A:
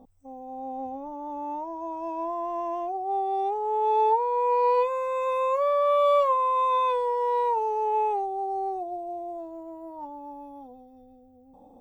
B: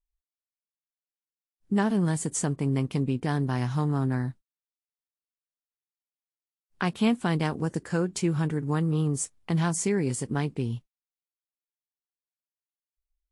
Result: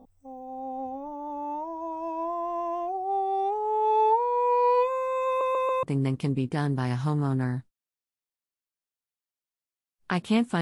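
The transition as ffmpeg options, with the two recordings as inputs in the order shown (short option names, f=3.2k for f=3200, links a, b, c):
-filter_complex "[0:a]apad=whole_dur=10.61,atrim=end=10.61,asplit=4[a][b][c][d];[a]atrim=end=5.412[e];[b]atrim=start=5.268:end=5.412[f];[c]atrim=start=5.268:end=5.412[g];[d]atrim=start=5.268:end=5.412[h];[1:a]atrim=start=2.538:end=7.32[i];[e][f]acrossfade=d=0.004:c1=hsin:c2=hsin[j];[j][g]acrossfade=d=0.004:c1=hsin:c2=hsin[k];[k][h]acrossfade=d=0.004:c1=hsin:c2=hsin[l];[l][i]acrossfade=d=0.004:c1=hsin:c2=hsin"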